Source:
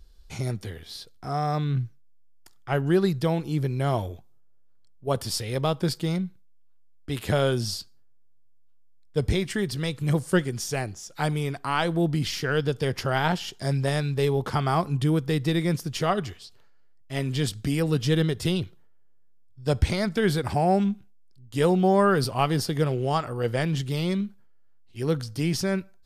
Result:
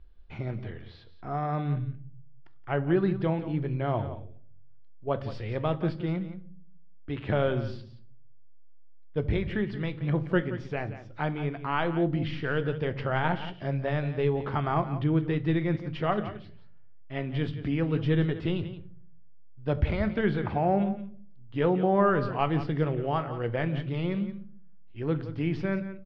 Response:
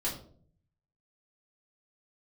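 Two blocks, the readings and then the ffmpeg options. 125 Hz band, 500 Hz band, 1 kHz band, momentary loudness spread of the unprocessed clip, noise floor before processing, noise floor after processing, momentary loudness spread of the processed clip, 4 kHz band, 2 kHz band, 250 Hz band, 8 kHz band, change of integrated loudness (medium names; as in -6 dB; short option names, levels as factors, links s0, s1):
-3.5 dB, -3.0 dB, -3.0 dB, 10 LU, -51 dBFS, -44 dBFS, 12 LU, -11.0 dB, -3.0 dB, -2.5 dB, under -30 dB, -3.5 dB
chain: -filter_complex "[0:a]lowpass=f=2800:w=0.5412,lowpass=f=2800:w=1.3066,aecho=1:1:175:0.224,asplit=2[s0][s1];[1:a]atrim=start_sample=2205[s2];[s1][s2]afir=irnorm=-1:irlink=0,volume=0.2[s3];[s0][s3]amix=inputs=2:normalize=0,volume=0.596"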